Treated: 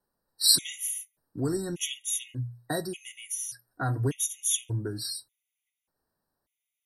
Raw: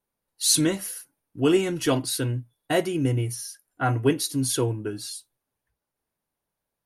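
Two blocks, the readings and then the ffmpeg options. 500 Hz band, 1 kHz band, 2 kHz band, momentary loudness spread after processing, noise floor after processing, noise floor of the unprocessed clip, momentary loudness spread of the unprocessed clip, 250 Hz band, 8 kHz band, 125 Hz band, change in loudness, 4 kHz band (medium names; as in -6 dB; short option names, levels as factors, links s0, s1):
-11.0 dB, -8.5 dB, -7.5 dB, 15 LU, under -85 dBFS, -85 dBFS, 14 LU, -11.0 dB, -0.5 dB, -5.5 dB, -4.0 dB, +1.0 dB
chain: -filter_complex "[0:a]bandreject=f=60:t=h:w=6,bandreject=f=120:t=h:w=6,acrossover=split=140|3000[s0][s1][s2];[s1]acompressor=threshold=0.0126:ratio=3[s3];[s0][s3][s2]amix=inputs=3:normalize=0,afftfilt=real='re*gt(sin(2*PI*0.85*pts/sr)*(1-2*mod(floor(b*sr/1024/1900),2)),0)':imag='im*gt(sin(2*PI*0.85*pts/sr)*(1-2*mod(floor(b*sr/1024/1900),2)),0)':win_size=1024:overlap=0.75,volume=1.5"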